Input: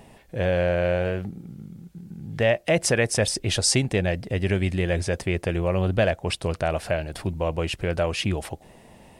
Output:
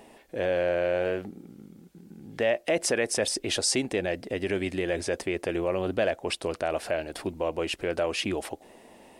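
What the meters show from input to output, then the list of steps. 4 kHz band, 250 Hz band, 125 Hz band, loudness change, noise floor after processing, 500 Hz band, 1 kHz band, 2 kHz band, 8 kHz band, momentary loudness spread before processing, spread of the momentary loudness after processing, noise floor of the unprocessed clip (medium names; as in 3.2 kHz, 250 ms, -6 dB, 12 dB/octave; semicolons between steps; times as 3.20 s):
-3.0 dB, -4.0 dB, -15.0 dB, -4.0 dB, -54 dBFS, -2.5 dB, -3.0 dB, -4.0 dB, -3.5 dB, 17 LU, 10 LU, -51 dBFS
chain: resonant low shelf 200 Hz -11 dB, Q 1.5; in parallel at +3 dB: peak limiter -17.5 dBFS, peak gain reduction 10.5 dB; on the sum: trim -9 dB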